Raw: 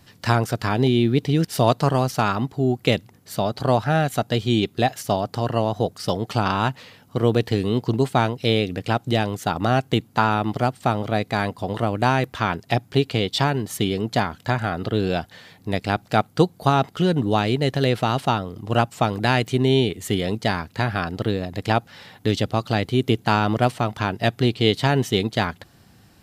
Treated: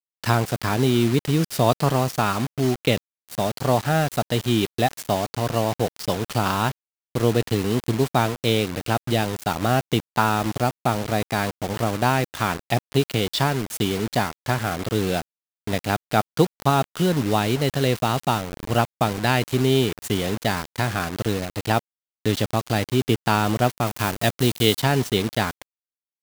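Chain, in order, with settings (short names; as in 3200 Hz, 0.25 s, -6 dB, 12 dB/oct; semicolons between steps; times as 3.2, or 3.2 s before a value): bit-crush 5-bit; 23.86–24.79 high shelf 8200 Hz -> 4800 Hz +8.5 dB; gain -1 dB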